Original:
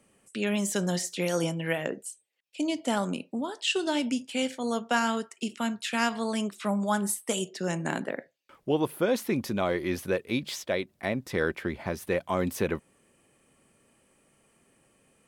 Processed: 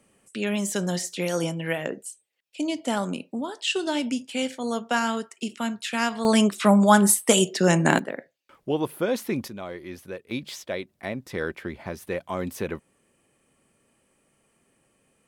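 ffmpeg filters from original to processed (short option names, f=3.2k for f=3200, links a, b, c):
-af "asetnsamples=n=441:p=0,asendcmd='6.25 volume volume 11dB;7.99 volume volume 0.5dB;9.48 volume volume -8.5dB;10.31 volume volume -2dB',volume=1.5dB"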